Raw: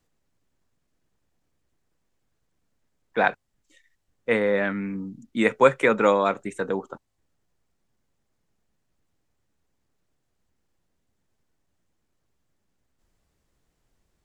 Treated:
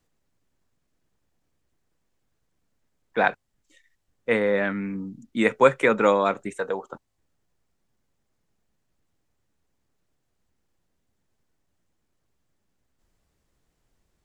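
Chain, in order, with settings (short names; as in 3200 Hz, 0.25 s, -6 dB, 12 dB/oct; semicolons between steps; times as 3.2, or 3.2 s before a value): 6.53–6.93 resonant low shelf 400 Hz -7.5 dB, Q 1.5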